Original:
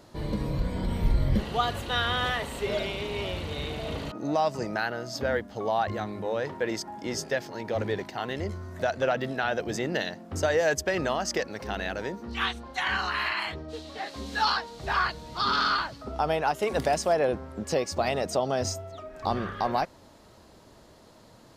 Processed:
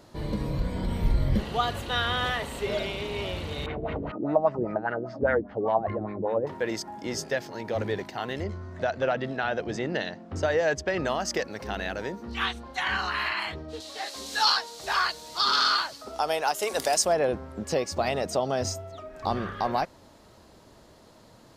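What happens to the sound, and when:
0:03.66–0:06.47: auto-filter low-pass sine 5 Hz 330–2,100 Hz
0:08.43–0:11.05: high-frequency loss of the air 92 metres
0:13.80–0:17.05: bass and treble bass −15 dB, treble +12 dB

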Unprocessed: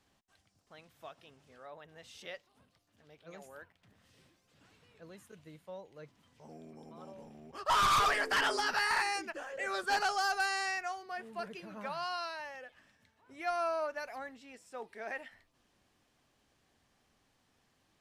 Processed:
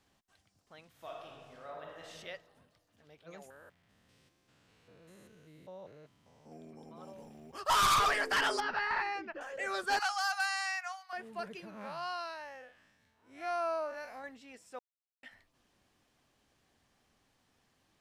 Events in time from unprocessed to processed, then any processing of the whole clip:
0:00.90–0:02.08: thrown reverb, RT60 1.6 s, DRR −2.5 dB
0:03.50–0:06.52: spectrum averaged block by block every 200 ms
0:07.02–0:07.93: high-shelf EQ 8,600 Hz → 5,400 Hz +8.5 dB
0:08.60–0:09.41: high-frequency loss of the air 300 metres
0:09.99–0:11.13: Butterworth high-pass 780 Hz 48 dB per octave
0:11.70–0:14.24: spectrum smeared in time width 94 ms
0:14.79–0:15.23: silence

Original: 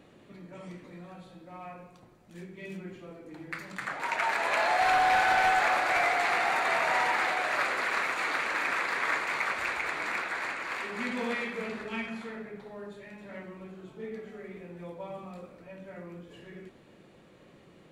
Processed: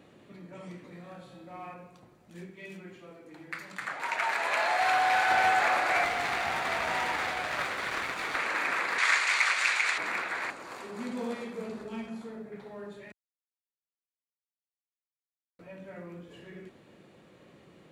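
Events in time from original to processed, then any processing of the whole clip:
0:00.89–0:01.74: flutter between parallel walls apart 5.2 metres, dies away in 0.36 s
0:02.50–0:05.30: low-shelf EQ 470 Hz −6.5 dB
0:06.04–0:08.35: gain on one half-wave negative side −12 dB
0:08.98–0:09.98: meter weighting curve ITU-R 468
0:10.50–0:12.52: parametric band 2,100 Hz −13.5 dB 1.6 octaves
0:13.12–0:15.59: silence
whole clip: high-pass filter 57 Hz

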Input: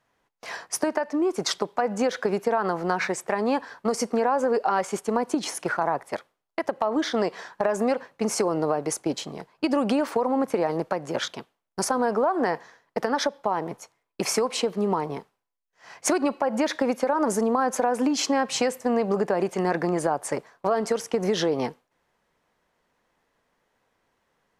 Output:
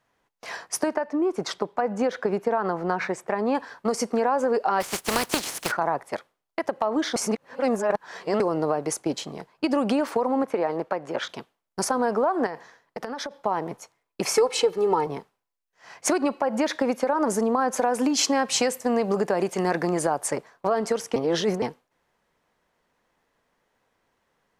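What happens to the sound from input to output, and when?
0:00.94–0:03.55: high-shelf EQ 3,100 Hz −9.5 dB
0:04.80–0:05.70: compressing power law on the bin magnitudes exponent 0.36
0:07.16–0:08.40: reverse
0:10.43–0:11.29: bass and treble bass −7 dB, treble −9 dB
0:12.46–0:13.31: downward compressor 5 to 1, threshold −29 dBFS
0:14.35–0:15.07: comb filter 2.3 ms, depth 80%
0:17.77–0:20.31: high-shelf EQ 3,800 Hz +6.5 dB
0:21.16–0:21.62: reverse

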